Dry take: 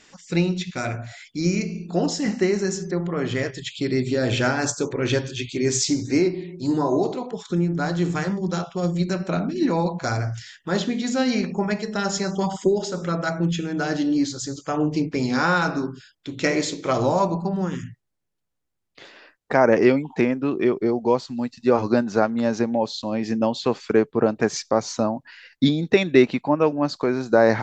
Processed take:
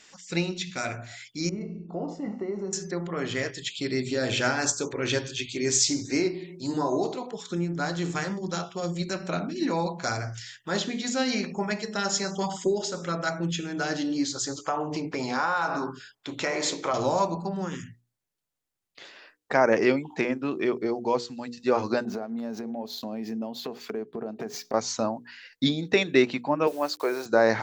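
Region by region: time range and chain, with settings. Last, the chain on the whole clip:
1.49–2.73 s: compression 3:1, threshold -22 dBFS + Savitzky-Golay filter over 65 samples
14.35–16.94 s: peaking EQ 900 Hz +13 dB 1.6 oct + compression 5:1, threshold -20 dBFS
22.05–24.74 s: median filter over 5 samples + compression 8:1, threshold -33 dBFS + small resonant body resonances 230/410/670 Hz, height 11 dB, ringing for 25 ms
26.67–27.26 s: resonant low shelf 280 Hz -13.5 dB, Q 1.5 + word length cut 8-bit, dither none
whole clip: tilt EQ +1.5 dB/octave; hum notches 60/120/180/240/300/360/420/480 Hz; trim -3 dB

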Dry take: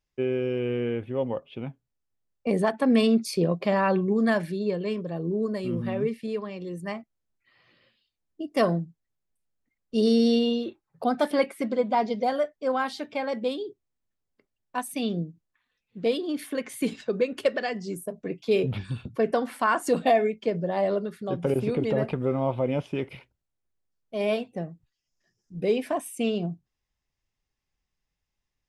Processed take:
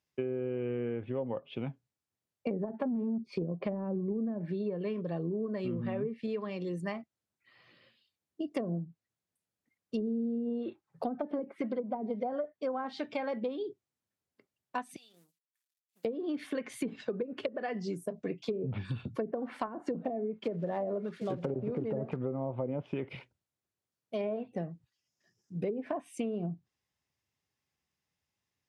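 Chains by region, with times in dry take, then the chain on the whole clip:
2.69–3.32 s: treble shelf 6.1 kHz -10 dB + comb 5 ms, depth 54% + overload inside the chain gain 18.5 dB
14.96–16.05 s: companding laws mixed up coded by A + differentiator + compression 4:1, threshold -58 dBFS
19.93–22.18 s: block-companded coder 5-bit + delay 741 ms -19.5 dB
whole clip: high-pass 83 Hz 24 dB/octave; low-pass that closes with the level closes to 350 Hz, closed at -18.5 dBFS; compression, threshold -31 dBFS

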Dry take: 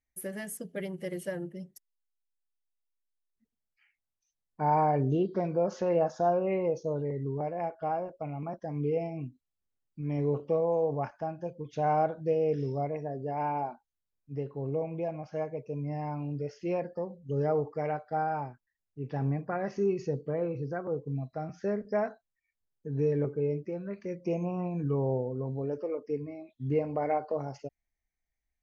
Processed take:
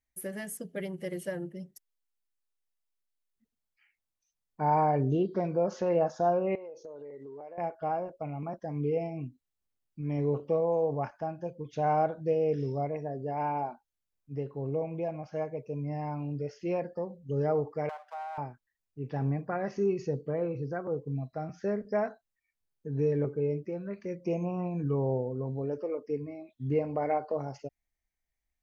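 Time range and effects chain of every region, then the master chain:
6.55–7.58 s: Chebyshev high-pass 440 Hz + compression 8:1, threshold -41 dBFS
17.89–18.38 s: comb filter that takes the minimum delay 1.2 ms + Chebyshev high-pass 510 Hz, order 5 + compression 2:1, threshold -42 dBFS
whole clip: none

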